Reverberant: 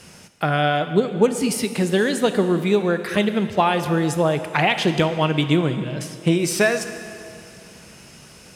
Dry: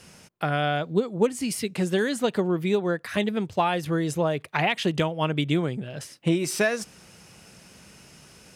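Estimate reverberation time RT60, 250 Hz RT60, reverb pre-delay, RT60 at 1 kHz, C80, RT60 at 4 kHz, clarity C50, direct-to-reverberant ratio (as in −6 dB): 2.5 s, 2.4 s, 17 ms, 2.5 s, 10.5 dB, 2.3 s, 9.5 dB, 9.0 dB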